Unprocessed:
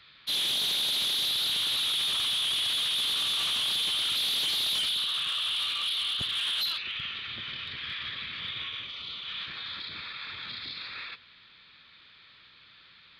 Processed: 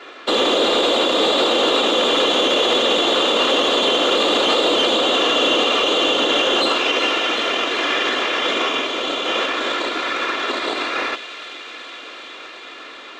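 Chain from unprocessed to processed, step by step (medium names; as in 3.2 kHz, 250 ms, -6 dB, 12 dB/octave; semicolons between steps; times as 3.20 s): comb filter that takes the minimum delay 2.9 ms; steep high-pass 260 Hz 36 dB/octave; treble shelf 3 kHz -7.5 dB; small resonant body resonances 510/1200/2800 Hz, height 8 dB, ringing for 25 ms; short-mantissa float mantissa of 2-bit; tape spacing loss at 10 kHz 24 dB; on a send: feedback echo behind a high-pass 373 ms, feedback 82%, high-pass 2.2 kHz, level -12 dB; on the sum: loudness maximiser +32.5 dB; trim -7 dB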